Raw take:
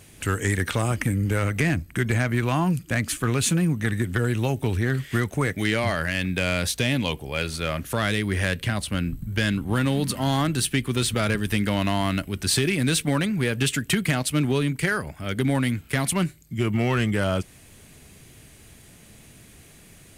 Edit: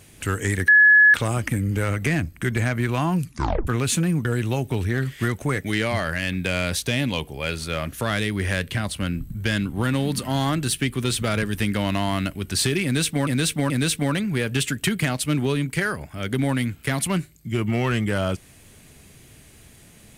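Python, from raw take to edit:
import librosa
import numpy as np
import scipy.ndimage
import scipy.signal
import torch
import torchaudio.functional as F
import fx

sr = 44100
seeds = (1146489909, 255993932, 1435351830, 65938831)

y = fx.edit(x, sr, fx.insert_tone(at_s=0.68, length_s=0.46, hz=1700.0, db=-9.5),
    fx.tape_stop(start_s=2.79, length_s=0.42),
    fx.cut(start_s=3.79, length_s=0.38),
    fx.repeat(start_s=12.76, length_s=0.43, count=3), tone=tone)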